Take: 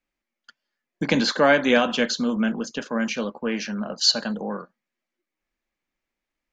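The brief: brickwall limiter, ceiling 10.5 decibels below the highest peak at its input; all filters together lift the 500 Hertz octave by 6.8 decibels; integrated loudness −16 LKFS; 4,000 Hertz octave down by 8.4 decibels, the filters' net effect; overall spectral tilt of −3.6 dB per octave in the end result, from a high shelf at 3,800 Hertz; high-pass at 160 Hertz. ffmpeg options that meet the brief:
ffmpeg -i in.wav -af "highpass=160,equalizer=frequency=500:width_type=o:gain=8,highshelf=frequency=3800:gain=-7,equalizer=frequency=4000:width_type=o:gain=-5.5,volume=8.5dB,alimiter=limit=-4.5dB:level=0:latency=1" out.wav

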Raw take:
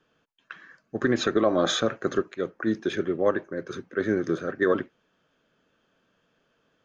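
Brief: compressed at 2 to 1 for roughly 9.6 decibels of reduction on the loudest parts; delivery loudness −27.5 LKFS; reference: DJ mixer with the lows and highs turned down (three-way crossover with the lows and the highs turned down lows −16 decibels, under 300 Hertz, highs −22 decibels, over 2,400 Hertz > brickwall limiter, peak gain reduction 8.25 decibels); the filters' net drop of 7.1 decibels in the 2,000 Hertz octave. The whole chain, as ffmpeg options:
ffmpeg -i in.wav -filter_complex "[0:a]equalizer=frequency=2000:width_type=o:gain=-7.5,acompressor=threshold=-36dB:ratio=2,acrossover=split=300 2400:gain=0.158 1 0.0794[link_01][link_02][link_03];[link_01][link_02][link_03]amix=inputs=3:normalize=0,volume=14.5dB,alimiter=limit=-15.5dB:level=0:latency=1" out.wav

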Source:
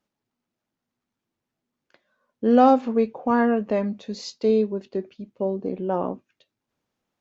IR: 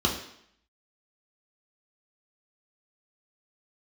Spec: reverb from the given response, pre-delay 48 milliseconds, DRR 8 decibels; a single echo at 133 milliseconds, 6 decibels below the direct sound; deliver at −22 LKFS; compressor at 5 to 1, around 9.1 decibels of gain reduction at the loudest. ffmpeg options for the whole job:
-filter_complex "[0:a]acompressor=threshold=-20dB:ratio=5,aecho=1:1:133:0.501,asplit=2[link_01][link_02];[1:a]atrim=start_sample=2205,adelay=48[link_03];[link_02][link_03]afir=irnorm=-1:irlink=0,volume=-19.5dB[link_04];[link_01][link_04]amix=inputs=2:normalize=0,volume=2.5dB"

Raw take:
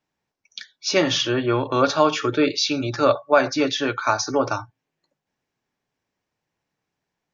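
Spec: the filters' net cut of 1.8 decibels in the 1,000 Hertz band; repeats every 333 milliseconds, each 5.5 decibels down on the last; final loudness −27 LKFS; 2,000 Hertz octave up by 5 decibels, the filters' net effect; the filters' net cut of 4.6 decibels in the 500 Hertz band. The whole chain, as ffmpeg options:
ffmpeg -i in.wav -af "equalizer=frequency=500:width_type=o:gain=-5,equalizer=frequency=1000:width_type=o:gain=-4.5,equalizer=frequency=2000:width_type=o:gain=9,aecho=1:1:333|666|999|1332|1665|1998|2331:0.531|0.281|0.149|0.079|0.0419|0.0222|0.0118,volume=-7dB" out.wav

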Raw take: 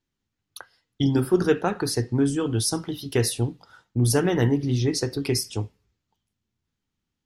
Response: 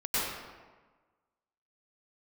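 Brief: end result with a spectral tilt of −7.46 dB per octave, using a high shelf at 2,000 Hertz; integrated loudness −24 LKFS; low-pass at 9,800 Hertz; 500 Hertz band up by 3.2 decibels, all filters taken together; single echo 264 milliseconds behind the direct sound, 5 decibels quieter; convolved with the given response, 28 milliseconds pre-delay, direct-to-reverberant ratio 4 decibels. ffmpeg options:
-filter_complex "[0:a]lowpass=9800,equalizer=frequency=500:width_type=o:gain=4.5,highshelf=frequency=2000:gain=-6.5,aecho=1:1:264:0.562,asplit=2[link_01][link_02];[1:a]atrim=start_sample=2205,adelay=28[link_03];[link_02][link_03]afir=irnorm=-1:irlink=0,volume=-13.5dB[link_04];[link_01][link_04]amix=inputs=2:normalize=0,volume=-3.5dB"

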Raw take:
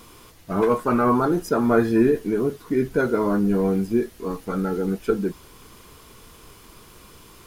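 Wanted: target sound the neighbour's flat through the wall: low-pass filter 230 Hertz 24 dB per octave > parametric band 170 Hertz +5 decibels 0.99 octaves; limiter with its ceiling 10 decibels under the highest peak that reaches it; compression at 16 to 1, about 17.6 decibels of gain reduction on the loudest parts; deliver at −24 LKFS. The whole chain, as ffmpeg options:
ffmpeg -i in.wav -af "acompressor=threshold=-31dB:ratio=16,alimiter=level_in=6.5dB:limit=-24dB:level=0:latency=1,volume=-6.5dB,lowpass=frequency=230:width=0.5412,lowpass=frequency=230:width=1.3066,equalizer=frequency=170:width_type=o:width=0.99:gain=5,volume=18dB" out.wav

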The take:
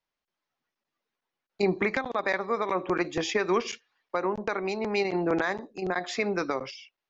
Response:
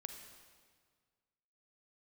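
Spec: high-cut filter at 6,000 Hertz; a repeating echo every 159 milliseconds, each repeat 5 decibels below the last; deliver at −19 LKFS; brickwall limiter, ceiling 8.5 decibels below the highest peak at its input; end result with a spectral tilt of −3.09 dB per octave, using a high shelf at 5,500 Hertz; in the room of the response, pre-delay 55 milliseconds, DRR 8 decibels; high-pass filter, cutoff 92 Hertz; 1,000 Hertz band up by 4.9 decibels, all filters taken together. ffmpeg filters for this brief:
-filter_complex "[0:a]highpass=92,lowpass=6000,equalizer=frequency=1000:width_type=o:gain=6,highshelf=frequency=5500:gain=4,alimiter=limit=-19.5dB:level=0:latency=1,aecho=1:1:159|318|477|636|795|954|1113:0.562|0.315|0.176|0.0988|0.0553|0.031|0.0173,asplit=2[link_01][link_02];[1:a]atrim=start_sample=2205,adelay=55[link_03];[link_02][link_03]afir=irnorm=-1:irlink=0,volume=-4.5dB[link_04];[link_01][link_04]amix=inputs=2:normalize=0,volume=10dB"

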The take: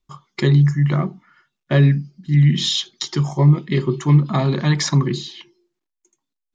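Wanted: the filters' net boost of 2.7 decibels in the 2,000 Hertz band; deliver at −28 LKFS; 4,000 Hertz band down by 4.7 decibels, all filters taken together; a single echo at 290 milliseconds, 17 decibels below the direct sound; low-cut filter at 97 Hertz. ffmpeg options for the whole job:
ffmpeg -i in.wav -af "highpass=97,equalizer=frequency=2000:width_type=o:gain=4.5,equalizer=frequency=4000:width_type=o:gain=-7,aecho=1:1:290:0.141,volume=-9dB" out.wav

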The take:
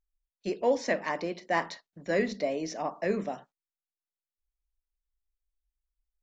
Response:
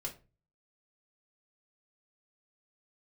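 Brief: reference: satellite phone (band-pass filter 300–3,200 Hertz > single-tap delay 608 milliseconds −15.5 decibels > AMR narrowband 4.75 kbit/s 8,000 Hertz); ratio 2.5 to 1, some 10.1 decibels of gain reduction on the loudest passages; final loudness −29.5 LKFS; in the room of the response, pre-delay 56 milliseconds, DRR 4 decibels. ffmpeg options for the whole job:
-filter_complex "[0:a]acompressor=threshold=-36dB:ratio=2.5,asplit=2[link_01][link_02];[1:a]atrim=start_sample=2205,adelay=56[link_03];[link_02][link_03]afir=irnorm=-1:irlink=0,volume=-3.5dB[link_04];[link_01][link_04]amix=inputs=2:normalize=0,highpass=300,lowpass=3200,aecho=1:1:608:0.168,volume=10.5dB" -ar 8000 -c:a libopencore_amrnb -b:a 4750

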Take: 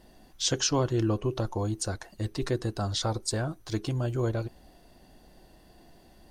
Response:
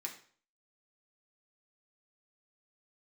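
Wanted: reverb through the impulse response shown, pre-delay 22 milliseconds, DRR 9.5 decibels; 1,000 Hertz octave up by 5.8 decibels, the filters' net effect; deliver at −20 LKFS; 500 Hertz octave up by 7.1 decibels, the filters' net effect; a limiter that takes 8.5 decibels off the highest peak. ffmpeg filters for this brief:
-filter_complex "[0:a]equalizer=frequency=500:width_type=o:gain=8,equalizer=frequency=1000:width_type=o:gain=4.5,alimiter=limit=-17.5dB:level=0:latency=1,asplit=2[link_01][link_02];[1:a]atrim=start_sample=2205,adelay=22[link_03];[link_02][link_03]afir=irnorm=-1:irlink=0,volume=-8dB[link_04];[link_01][link_04]amix=inputs=2:normalize=0,volume=8.5dB"

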